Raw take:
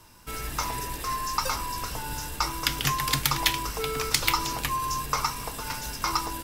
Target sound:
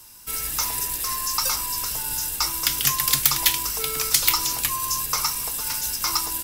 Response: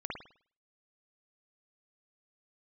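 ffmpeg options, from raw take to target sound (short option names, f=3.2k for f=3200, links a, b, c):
-filter_complex "[0:a]acrossover=split=740|1900[a][b][c];[c]asoftclip=type=tanh:threshold=-17.5dB[d];[a][b][d]amix=inputs=3:normalize=0,crystalizer=i=5:c=0,volume=-4.5dB"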